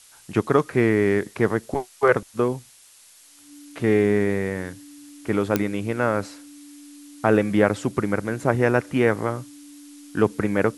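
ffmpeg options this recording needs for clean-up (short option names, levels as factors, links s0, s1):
-af "adeclick=t=4,bandreject=f=290:w=30,afftdn=nr=16:nf=-51"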